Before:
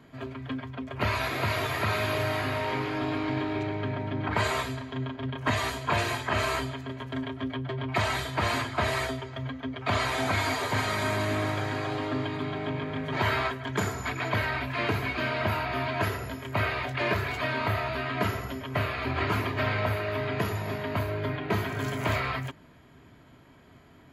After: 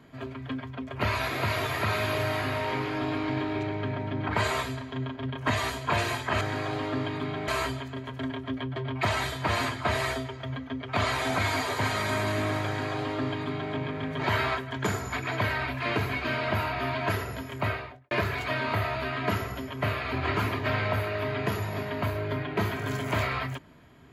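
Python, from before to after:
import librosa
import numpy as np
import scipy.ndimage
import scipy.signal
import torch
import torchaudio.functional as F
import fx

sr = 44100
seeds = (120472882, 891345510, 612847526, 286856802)

y = fx.studio_fade_out(x, sr, start_s=16.49, length_s=0.55)
y = fx.edit(y, sr, fx.duplicate(start_s=11.6, length_s=1.07, to_s=6.41), tone=tone)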